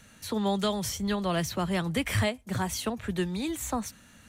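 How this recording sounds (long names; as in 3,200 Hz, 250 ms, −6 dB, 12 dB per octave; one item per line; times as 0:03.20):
background noise floor −56 dBFS
spectral slope −4.5 dB per octave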